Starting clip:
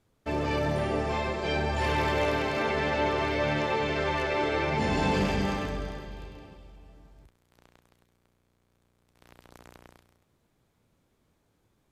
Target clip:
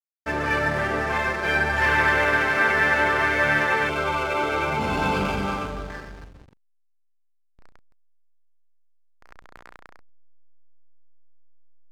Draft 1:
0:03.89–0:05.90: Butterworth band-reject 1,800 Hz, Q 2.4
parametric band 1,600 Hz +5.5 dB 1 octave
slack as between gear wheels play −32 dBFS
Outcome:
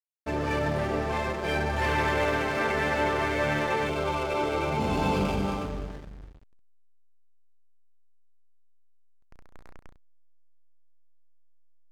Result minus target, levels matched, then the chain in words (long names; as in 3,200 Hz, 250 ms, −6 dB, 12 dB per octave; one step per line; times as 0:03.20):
2,000 Hz band −5.0 dB
0:03.89–0:05.90: Butterworth band-reject 1,800 Hz, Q 2.4
parametric band 1,600 Hz +17 dB 1 octave
slack as between gear wheels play −32 dBFS